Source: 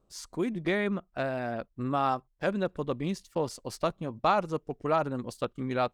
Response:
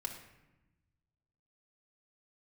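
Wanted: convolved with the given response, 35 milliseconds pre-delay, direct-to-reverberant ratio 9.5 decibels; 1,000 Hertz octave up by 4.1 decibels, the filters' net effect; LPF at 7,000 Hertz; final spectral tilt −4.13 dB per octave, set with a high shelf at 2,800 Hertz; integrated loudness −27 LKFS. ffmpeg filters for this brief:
-filter_complex "[0:a]lowpass=7000,equalizer=frequency=1000:width_type=o:gain=4.5,highshelf=frequency=2800:gain=7,asplit=2[link_01][link_02];[1:a]atrim=start_sample=2205,adelay=35[link_03];[link_02][link_03]afir=irnorm=-1:irlink=0,volume=-9.5dB[link_04];[link_01][link_04]amix=inputs=2:normalize=0,volume=1.5dB"

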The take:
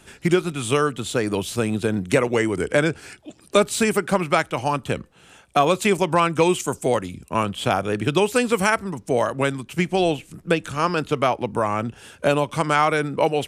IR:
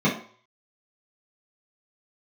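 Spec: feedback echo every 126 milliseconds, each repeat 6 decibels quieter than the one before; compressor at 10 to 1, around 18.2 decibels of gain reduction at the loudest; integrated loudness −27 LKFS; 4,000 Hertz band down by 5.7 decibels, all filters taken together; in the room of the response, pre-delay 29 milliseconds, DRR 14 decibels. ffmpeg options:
-filter_complex "[0:a]equalizer=frequency=4000:width_type=o:gain=-8,acompressor=threshold=-32dB:ratio=10,aecho=1:1:126|252|378|504|630|756:0.501|0.251|0.125|0.0626|0.0313|0.0157,asplit=2[link_01][link_02];[1:a]atrim=start_sample=2205,adelay=29[link_03];[link_02][link_03]afir=irnorm=-1:irlink=0,volume=-30dB[link_04];[link_01][link_04]amix=inputs=2:normalize=0,volume=8.5dB"

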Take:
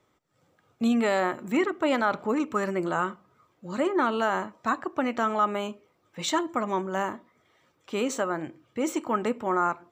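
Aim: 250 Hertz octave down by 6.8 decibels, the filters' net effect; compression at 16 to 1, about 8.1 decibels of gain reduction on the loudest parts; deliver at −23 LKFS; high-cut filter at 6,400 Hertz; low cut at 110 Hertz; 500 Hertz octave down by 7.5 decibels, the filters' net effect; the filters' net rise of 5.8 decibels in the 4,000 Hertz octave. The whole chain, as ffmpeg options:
ffmpeg -i in.wav -af "highpass=110,lowpass=6400,equalizer=frequency=250:width_type=o:gain=-5.5,equalizer=frequency=500:width_type=o:gain=-8.5,equalizer=frequency=4000:width_type=o:gain=8,acompressor=threshold=-29dB:ratio=16,volume=12.5dB" out.wav

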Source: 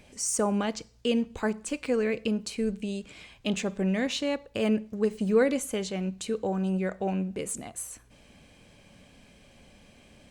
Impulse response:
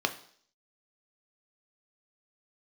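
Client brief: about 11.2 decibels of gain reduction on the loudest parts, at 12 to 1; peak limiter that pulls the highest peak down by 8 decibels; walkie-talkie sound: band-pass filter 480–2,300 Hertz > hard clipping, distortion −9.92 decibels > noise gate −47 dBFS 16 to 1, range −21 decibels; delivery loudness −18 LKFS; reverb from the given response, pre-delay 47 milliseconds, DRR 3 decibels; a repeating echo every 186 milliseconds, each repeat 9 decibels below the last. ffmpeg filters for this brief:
-filter_complex "[0:a]acompressor=threshold=-28dB:ratio=12,alimiter=level_in=1.5dB:limit=-24dB:level=0:latency=1,volume=-1.5dB,aecho=1:1:186|372|558|744:0.355|0.124|0.0435|0.0152,asplit=2[link_01][link_02];[1:a]atrim=start_sample=2205,adelay=47[link_03];[link_02][link_03]afir=irnorm=-1:irlink=0,volume=-11.5dB[link_04];[link_01][link_04]amix=inputs=2:normalize=0,highpass=480,lowpass=2300,asoftclip=type=hard:threshold=-37dB,agate=range=-21dB:threshold=-47dB:ratio=16,volume=24.5dB"

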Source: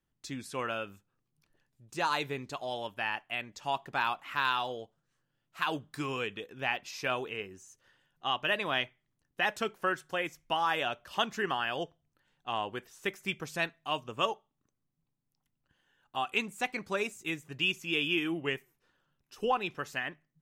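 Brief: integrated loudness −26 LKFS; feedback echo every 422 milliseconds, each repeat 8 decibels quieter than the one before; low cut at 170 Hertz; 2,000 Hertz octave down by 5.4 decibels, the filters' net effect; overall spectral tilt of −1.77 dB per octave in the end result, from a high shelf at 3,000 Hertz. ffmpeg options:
ffmpeg -i in.wav -af "highpass=170,equalizer=frequency=2000:width_type=o:gain=-4.5,highshelf=frequency=3000:gain=-6.5,aecho=1:1:422|844|1266|1688|2110:0.398|0.159|0.0637|0.0255|0.0102,volume=10dB" out.wav

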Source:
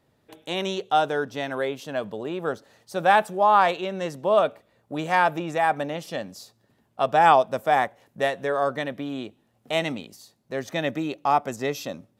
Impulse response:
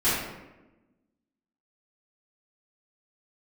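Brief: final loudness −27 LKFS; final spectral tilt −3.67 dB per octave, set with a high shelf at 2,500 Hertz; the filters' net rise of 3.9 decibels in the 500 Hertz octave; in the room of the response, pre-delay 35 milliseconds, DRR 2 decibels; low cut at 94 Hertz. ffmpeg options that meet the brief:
-filter_complex "[0:a]highpass=94,equalizer=frequency=500:width_type=o:gain=5.5,highshelf=frequency=2500:gain=-4.5,asplit=2[link_01][link_02];[1:a]atrim=start_sample=2205,adelay=35[link_03];[link_02][link_03]afir=irnorm=-1:irlink=0,volume=-16.5dB[link_04];[link_01][link_04]amix=inputs=2:normalize=0,volume=-6.5dB"

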